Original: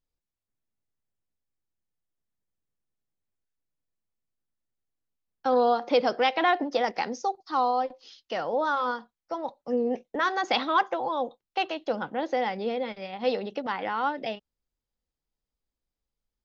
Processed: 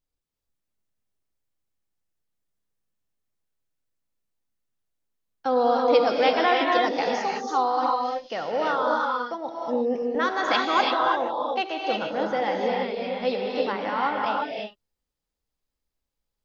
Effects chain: non-linear reverb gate 0.37 s rising, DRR -1.5 dB

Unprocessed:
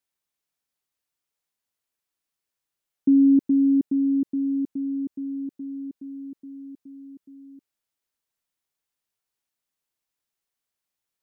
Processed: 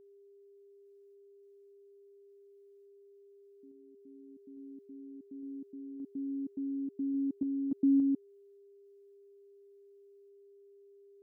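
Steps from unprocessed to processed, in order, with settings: whole clip reversed; random-step tremolo; whine 400 Hz -47 dBFS; gain -9 dB

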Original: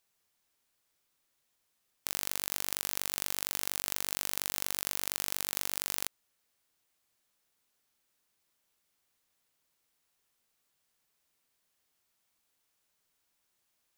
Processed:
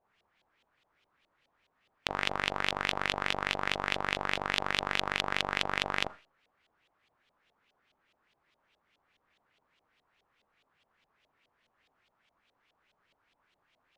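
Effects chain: Schroeder reverb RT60 0.34 s, combs from 27 ms, DRR 14.5 dB; LFO low-pass saw up 4.8 Hz 630–3500 Hz; gain +8.5 dB

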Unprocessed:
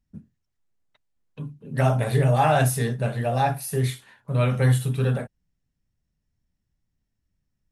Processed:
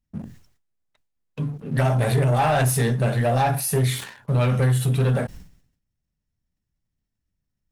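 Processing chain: compressor 3:1, threshold -22 dBFS, peak gain reduction 6 dB; sample leveller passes 2; sustainer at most 94 dB/s

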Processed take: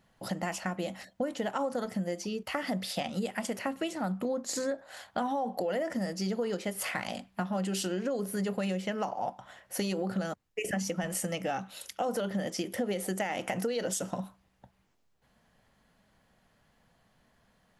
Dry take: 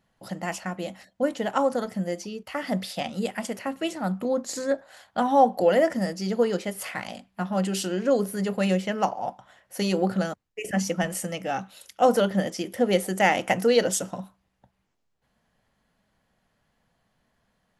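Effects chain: limiter -17 dBFS, peak gain reduction 10 dB; compressor 4:1, threshold -34 dBFS, peak gain reduction 11 dB; gain +3.5 dB

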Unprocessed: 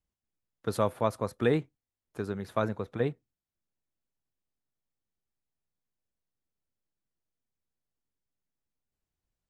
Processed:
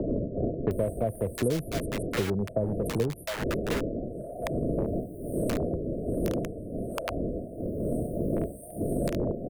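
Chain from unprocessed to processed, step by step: wind noise 520 Hz -42 dBFS; FFT band-reject 710–8400 Hz; dynamic EQ 1100 Hz, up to +5 dB, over -46 dBFS, Q 0.78; in parallel at -5 dB: wrapped overs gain 28 dB; on the sum: wow and flutter 70 cents; bands offset in time lows, highs 0.71 s, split 860 Hz; three-band squash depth 100%; gain +4.5 dB

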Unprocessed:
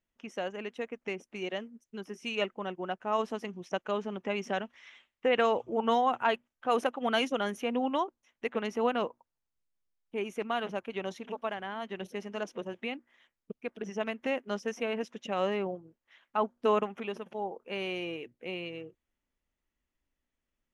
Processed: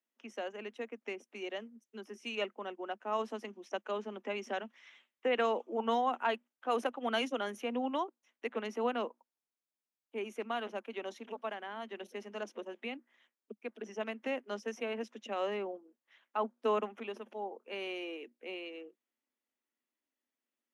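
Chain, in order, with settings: steep high-pass 210 Hz 96 dB/oct; gain -4.5 dB

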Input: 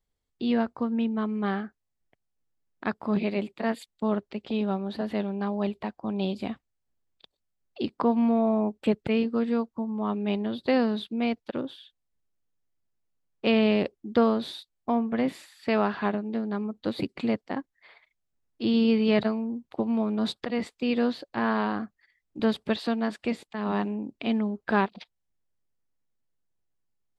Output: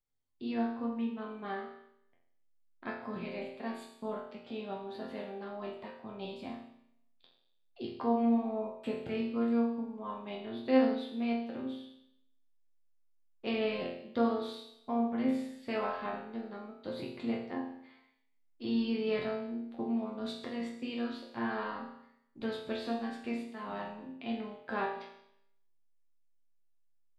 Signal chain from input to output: resonator bank F2 sus4, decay 0.76 s; gain +9 dB

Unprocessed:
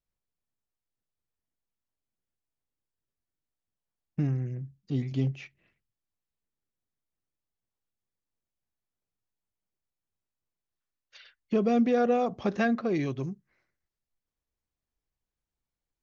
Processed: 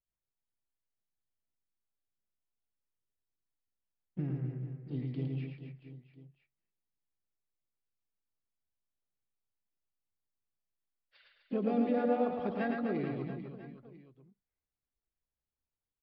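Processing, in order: harmoniser +3 st -10 dB; high shelf 3700 Hz -11 dB; on a send: reverse bouncing-ball echo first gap 0.11 s, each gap 1.3×, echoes 5; on the sum: downsampling 11025 Hz; gain -8.5 dB

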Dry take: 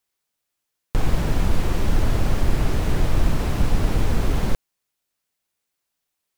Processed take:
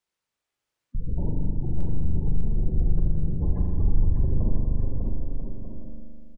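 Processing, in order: median filter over 3 samples; spectral gate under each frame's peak -20 dB strong; 1.75 tape start 0.46 s; 2.72–4.21 low shelf 180 Hz +11.5 dB; limiter -16 dBFS, peak gain reduction 34.5 dB; bouncing-ball echo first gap 0.6 s, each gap 0.65×, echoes 5; reverb RT60 2.3 s, pre-delay 40 ms, DRR 0.5 dB; gain -4 dB

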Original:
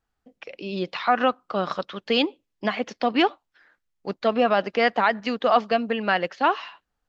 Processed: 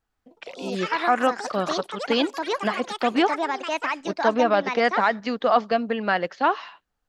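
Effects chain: dynamic EQ 2700 Hz, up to -5 dB, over -43 dBFS, Q 2.8; echoes that change speed 0.111 s, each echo +5 st, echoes 3, each echo -6 dB

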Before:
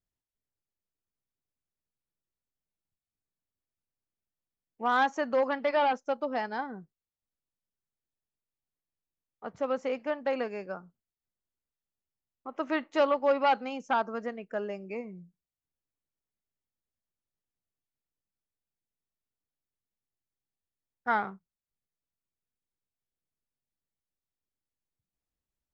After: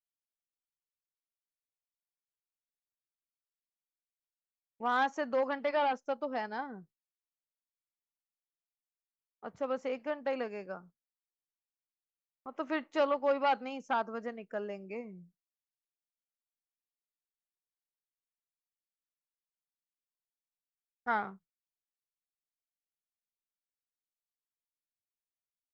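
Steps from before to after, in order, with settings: gate with hold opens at -45 dBFS; gain -4 dB

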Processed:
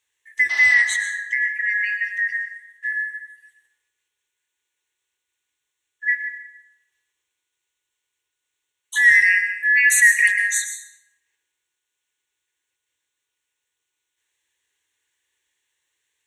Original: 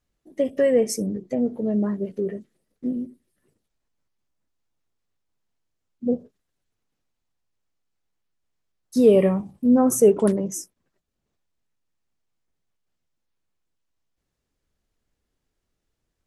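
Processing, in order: four-band scrambler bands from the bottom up 3142; HPF 51 Hz; band shelf 5200 Hz +12 dB; in parallel at 0 dB: limiter -13 dBFS, peak gain reduction 8 dB; on the sum: fixed phaser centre 1000 Hz, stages 8; 0.49–0.82 painted sound noise 630–6100 Hz -35 dBFS; 0.74–1.54 air absorption 75 m; plate-style reverb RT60 0.97 s, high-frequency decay 0.6×, pre-delay 95 ms, DRR 6 dB

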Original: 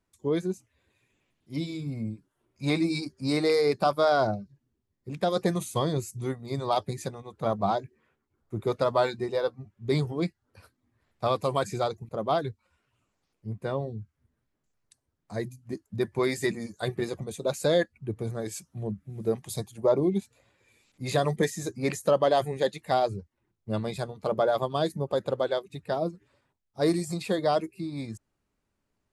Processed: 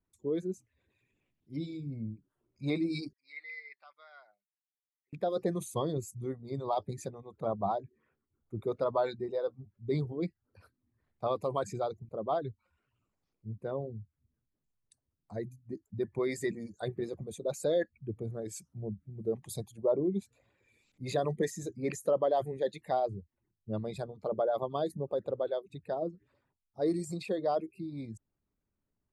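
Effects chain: formant sharpening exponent 1.5; 3.13–5.13 ladder band-pass 2100 Hz, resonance 85%; gain -5.5 dB

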